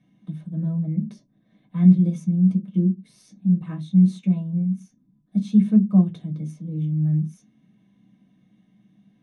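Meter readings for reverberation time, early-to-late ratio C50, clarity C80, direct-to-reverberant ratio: not exponential, 19.5 dB, 22.5 dB, -0.5 dB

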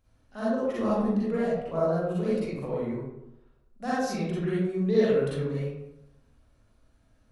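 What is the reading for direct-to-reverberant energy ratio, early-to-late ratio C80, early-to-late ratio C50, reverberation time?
-9.0 dB, 1.0 dB, -4.5 dB, 0.85 s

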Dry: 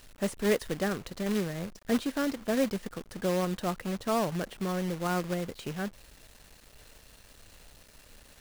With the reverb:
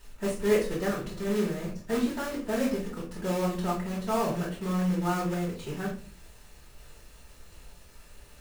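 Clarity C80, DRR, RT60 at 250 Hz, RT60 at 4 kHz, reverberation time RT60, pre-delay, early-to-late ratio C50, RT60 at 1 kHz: 12.0 dB, -8.0 dB, 0.60 s, 0.25 s, 0.40 s, 3 ms, 7.0 dB, 0.35 s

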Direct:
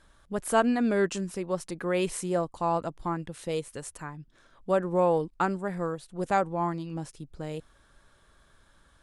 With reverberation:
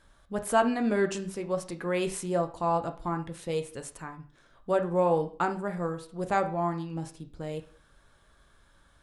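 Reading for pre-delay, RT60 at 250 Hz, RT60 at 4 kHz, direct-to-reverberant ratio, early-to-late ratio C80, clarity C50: 5 ms, 0.40 s, 0.40 s, 6.0 dB, 17.5 dB, 13.0 dB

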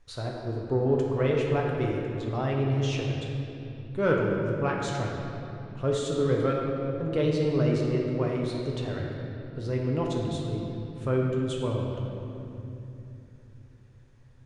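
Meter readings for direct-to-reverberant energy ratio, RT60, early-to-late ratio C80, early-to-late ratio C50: -2.0 dB, 3.0 s, 2.0 dB, 0.5 dB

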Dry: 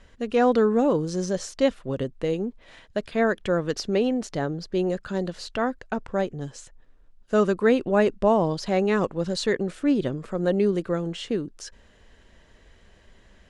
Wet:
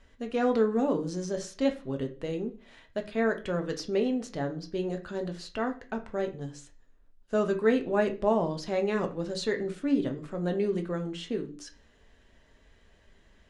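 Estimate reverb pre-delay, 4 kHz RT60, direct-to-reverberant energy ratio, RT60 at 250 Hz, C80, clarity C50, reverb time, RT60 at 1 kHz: 3 ms, 0.45 s, 4.0 dB, 0.50 s, 19.0 dB, 13.5 dB, 0.40 s, 0.40 s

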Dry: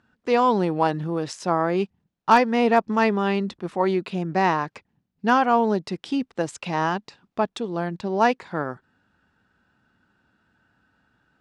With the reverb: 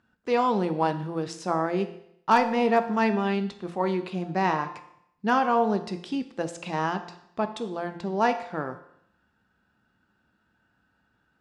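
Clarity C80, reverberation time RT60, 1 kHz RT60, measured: 14.5 dB, 0.70 s, 0.70 s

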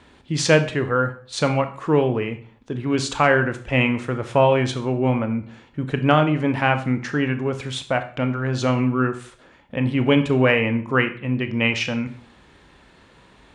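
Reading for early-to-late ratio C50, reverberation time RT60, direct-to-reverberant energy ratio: 12.5 dB, 0.45 s, 8.5 dB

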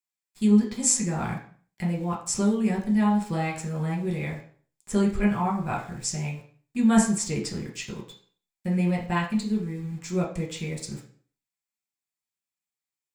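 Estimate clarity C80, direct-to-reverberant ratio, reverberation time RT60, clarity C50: 12.5 dB, -2.0 dB, 0.50 s, 8.5 dB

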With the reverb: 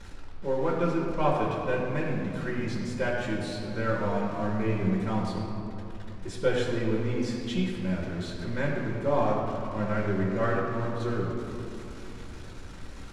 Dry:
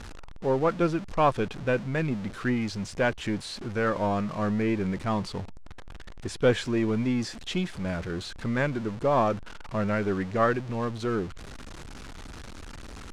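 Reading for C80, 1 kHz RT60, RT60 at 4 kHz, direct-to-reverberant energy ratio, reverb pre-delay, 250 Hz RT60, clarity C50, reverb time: 2.0 dB, 2.9 s, 1.5 s, -4.5 dB, 5 ms, 3.9 s, 1.0 dB, 3.0 s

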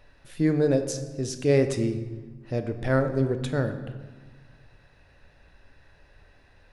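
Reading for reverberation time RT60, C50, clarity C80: 1.4 s, 10.0 dB, 11.5 dB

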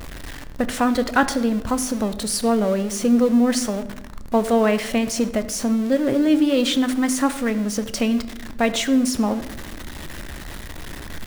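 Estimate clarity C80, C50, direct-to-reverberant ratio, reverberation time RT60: 15.5 dB, 14.0 dB, 11.0 dB, 1.0 s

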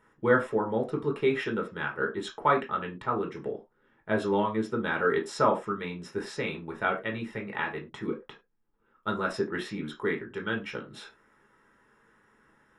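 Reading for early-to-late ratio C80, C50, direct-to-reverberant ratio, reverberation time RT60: 20.0 dB, 13.0 dB, 0.0 dB, not exponential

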